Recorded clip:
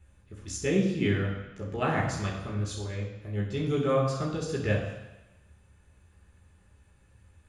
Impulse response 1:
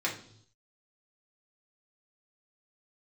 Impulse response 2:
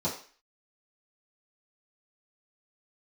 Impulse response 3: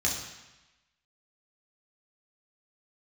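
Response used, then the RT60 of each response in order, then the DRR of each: 3; no single decay rate, 0.40 s, 1.0 s; -4.0 dB, -10.0 dB, -3.0 dB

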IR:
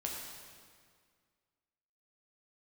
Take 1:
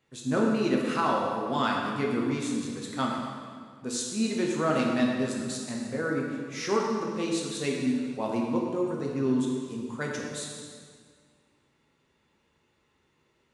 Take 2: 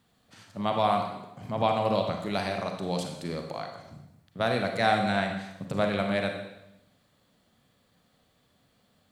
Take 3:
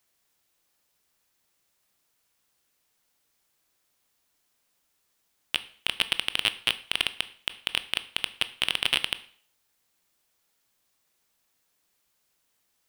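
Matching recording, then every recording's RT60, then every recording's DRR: 1; 1.9 s, 0.90 s, 0.50 s; -2.0 dB, 3.5 dB, 12.5 dB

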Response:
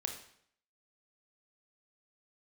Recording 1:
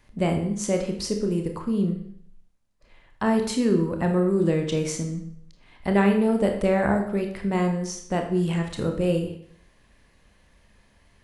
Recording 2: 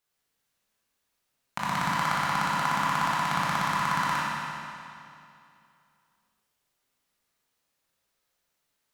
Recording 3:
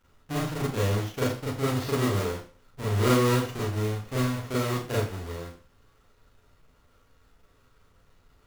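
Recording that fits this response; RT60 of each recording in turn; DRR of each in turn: 1; 0.65 s, 2.6 s, 0.40 s; 3.5 dB, -6.0 dB, -7.0 dB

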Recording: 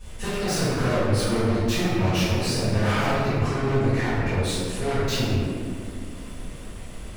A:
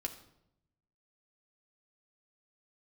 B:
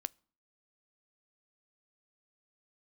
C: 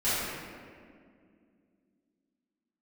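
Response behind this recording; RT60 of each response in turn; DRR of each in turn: C; 0.80 s, 0.50 s, 2.2 s; 3.0 dB, 20.5 dB, -15.5 dB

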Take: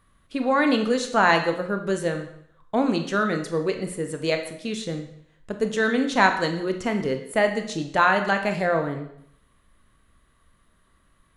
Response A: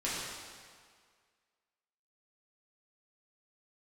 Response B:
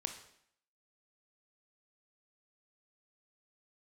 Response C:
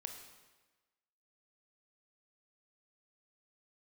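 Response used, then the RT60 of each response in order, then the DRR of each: B; 1.9 s, 0.65 s, 1.2 s; -9.0 dB, 5.5 dB, 4.0 dB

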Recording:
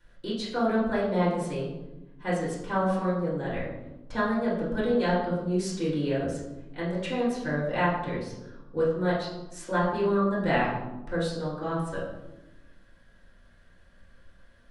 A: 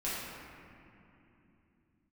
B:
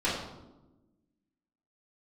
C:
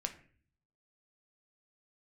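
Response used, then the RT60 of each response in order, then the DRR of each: B; 3.0 s, 1.1 s, 0.45 s; -10.0 dB, -8.5 dB, 5.0 dB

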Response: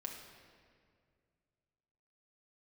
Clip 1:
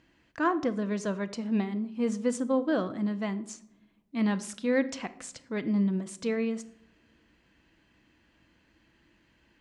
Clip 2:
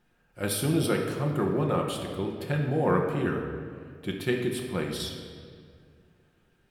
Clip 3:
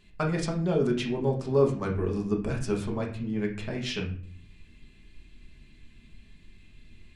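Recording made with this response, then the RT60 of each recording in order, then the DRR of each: 2; no single decay rate, 2.1 s, 0.50 s; 11.0 dB, 0.0 dB, -1.0 dB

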